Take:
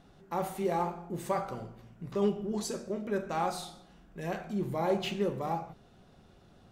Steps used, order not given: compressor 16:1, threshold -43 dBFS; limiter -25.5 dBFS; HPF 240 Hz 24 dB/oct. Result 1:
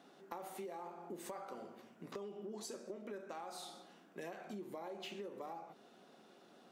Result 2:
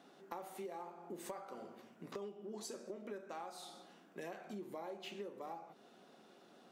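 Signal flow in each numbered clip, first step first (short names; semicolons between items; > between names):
limiter > HPF > compressor; HPF > compressor > limiter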